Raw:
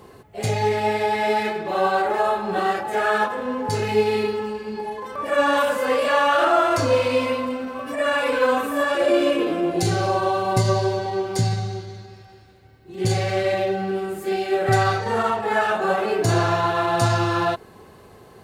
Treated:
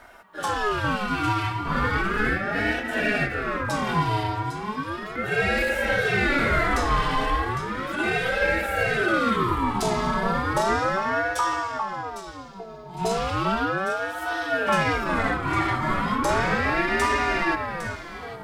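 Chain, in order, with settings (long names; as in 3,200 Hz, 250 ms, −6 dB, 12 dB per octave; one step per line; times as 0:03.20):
soft clipping −12 dBFS, distortion −20 dB
delay that swaps between a low-pass and a high-pass 403 ms, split 1,100 Hz, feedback 58%, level −5.5 dB
ring modulator whose carrier an LFO sweeps 810 Hz, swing 35%, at 0.35 Hz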